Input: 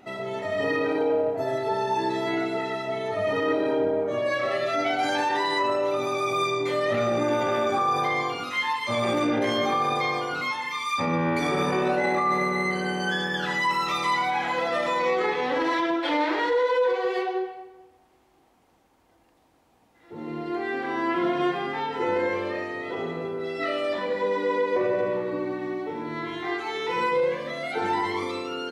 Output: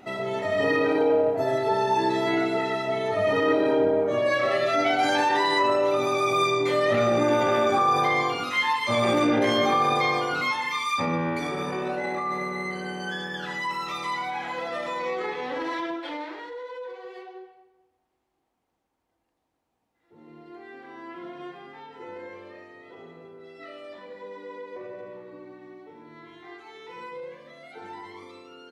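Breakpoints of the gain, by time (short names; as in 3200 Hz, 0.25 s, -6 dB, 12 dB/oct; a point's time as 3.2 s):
10.76 s +2.5 dB
11.56 s -5.5 dB
15.86 s -5.5 dB
16.49 s -15 dB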